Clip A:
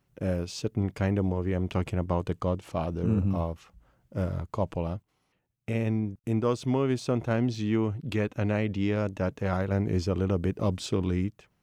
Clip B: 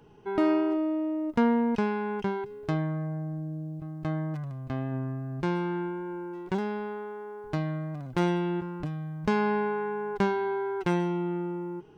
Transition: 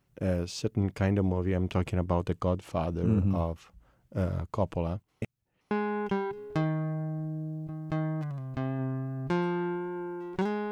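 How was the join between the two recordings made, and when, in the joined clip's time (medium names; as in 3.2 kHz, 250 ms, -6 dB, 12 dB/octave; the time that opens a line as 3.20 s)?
clip A
5.22–5.71 s: reverse
5.71 s: go over to clip B from 1.84 s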